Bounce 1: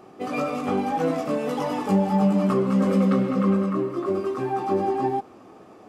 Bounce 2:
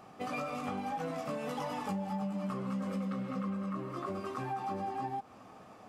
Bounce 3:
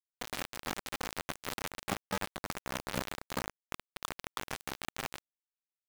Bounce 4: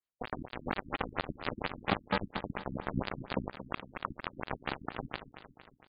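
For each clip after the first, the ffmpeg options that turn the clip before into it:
ffmpeg -i in.wav -af "equalizer=frequency=360:width_type=o:width=0.74:gain=-13,acompressor=threshold=-32dB:ratio=6,volume=-2dB" out.wav
ffmpeg -i in.wav -af "aecho=1:1:797:0.15,acrusher=bits=4:mix=0:aa=0.000001,tremolo=f=86:d=0.667,volume=3.5dB" out.wav
ffmpeg -i in.wav -af "aecho=1:1:229|458|687|916|1145|1374:0.237|0.138|0.0798|0.0463|0.0268|0.0156,afftfilt=real='re*lt(b*sr/1024,300*pow(5000/300,0.5+0.5*sin(2*PI*4.3*pts/sr)))':imag='im*lt(b*sr/1024,300*pow(5000/300,0.5+0.5*sin(2*PI*4.3*pts/sr)))':win_size=1024:overlap=0.75,volume=5dB" out.wav

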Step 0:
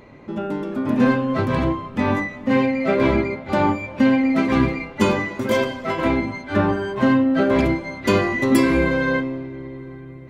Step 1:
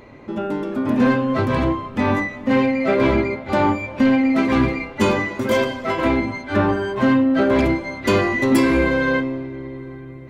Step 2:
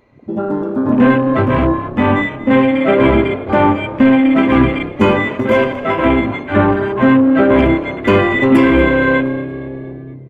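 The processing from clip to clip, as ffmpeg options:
ffmpeg -i in.wav -af "equalizer=frequency=170:width_type=o:width=0.31:gain=-6.5,acontrast=90,volume=-5dB" out.wav
ffmpeg -i in.wav -filter_complex "[0:a]afwtdn=0.0398,asplit=5[link_01][link_02][link_03][link_04][link_05];[link_02]adelay=234,afreqshift=34,volume=-16.5dB[link_06];[link_03]adelay=468,afreqshift=68,volume=-23.1dB[link_07];[link_04]adelay=702,afreqshift=102,volume=-29.6dB[link_08];[link_05]adelay=936,afreqshift=136,volume=-36.2dB[link_09];[link_01][link_06][link_07][link_08][link_09]amix=inputs=5:normalize=0,volume=6dB" out.wav

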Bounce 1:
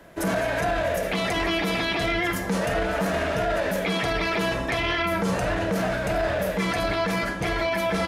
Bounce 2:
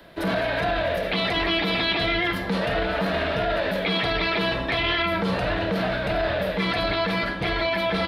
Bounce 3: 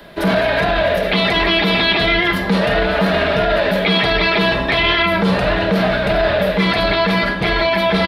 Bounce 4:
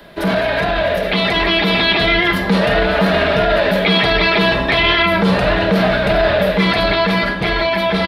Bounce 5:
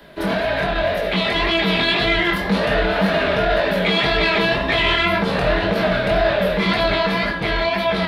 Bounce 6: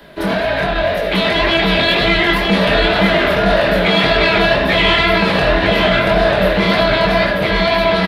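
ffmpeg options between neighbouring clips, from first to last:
ffmpeg -i in.wav -filter_complex "[0:a]acrossover=split=280|5100[link_01][link_02][link_03];[link_03]acompressor=mode=upward:threshold=-52dB:ratio=2.5[link_04];[link_01][link_02][link_04]amix=inputs=3:normalize=0,highshelf=frequency=5200:width_type=q:width=3:gain=-9.5" out.wav
ffmpeg -i in.wav -af "aecho=1:1:4.9:0.31,volume=8dB" out.wav
ffmpeg -i in.wav -af "dynaudnorm=framelen=380:gausssize=9:maxgain=11.5dB,volume=-1dB" out.wav
ffmpeg -i in.wav -filter_complex "[0:a]asplit=2[link_01][link_02];[link_02]asoftclip=type=tanh:threshold=-12dB,volume=-10.5dB[link_03];[link_01][link_03]amix=inputs=2:normalize=0,flanger=delay=18:depth=6.7:speed=1.9,volume=-2.5dB" out.wav
ffmpeg -i in.wav -af "aecho=1:1:939:0.631,volume=3.5dB" out.wav

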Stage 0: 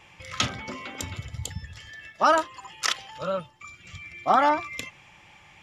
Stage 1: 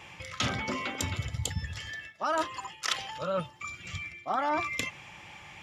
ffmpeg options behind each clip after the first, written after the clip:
ffmpeg -i in.wav -af "highpass=50,areverse,acompressor=threshold=-32dB:ratio=6,areverse,volume=4.5dB" out.wav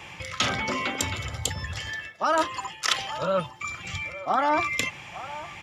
ffmpeg -i in.wav -filter_complex "[0:a]acrossover=split=400|1600[link_01][link_02][link_03];[link_01]alimiter=level_in=10.5dB:limit=-24dB:level=0:latency=1,volume=-10.5dB[link_04];[link_02]aecho=1:1:861:0.224[link_05];[link_04][link_05][link_03]amix=inputs=3:normalize=0,volume=6dB" out.wav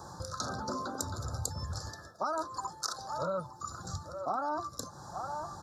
ffmpeg -i in.wav -af "acompressor=threshold=-32dB:ratio=4,asuperstop=centerf=2500:order=12:qfactor=1" out.wav

